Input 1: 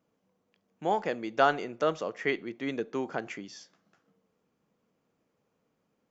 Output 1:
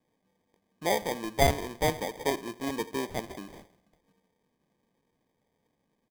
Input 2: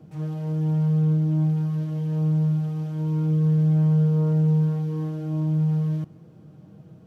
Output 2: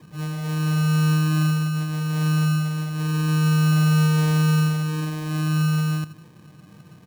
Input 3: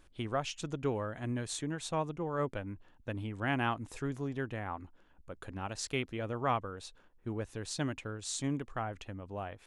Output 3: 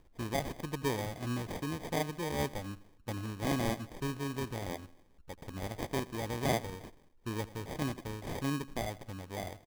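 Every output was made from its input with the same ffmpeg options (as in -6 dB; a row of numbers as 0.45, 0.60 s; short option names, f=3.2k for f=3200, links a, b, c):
-af "aecho=1:1:84|168|252|336:0.112|0.0516|0.0237|0.0109,acrusher=samples=32:mix=1:aa=0.000001"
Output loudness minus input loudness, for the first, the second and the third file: +0.5, +1.5, 0.0 LU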